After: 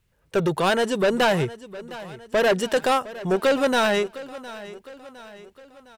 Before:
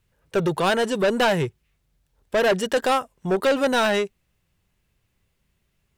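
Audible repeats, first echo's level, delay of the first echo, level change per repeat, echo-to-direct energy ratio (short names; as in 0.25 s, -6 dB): 3, -17.0 dB, 0.71 s, -6.0 dB, -16.0 dB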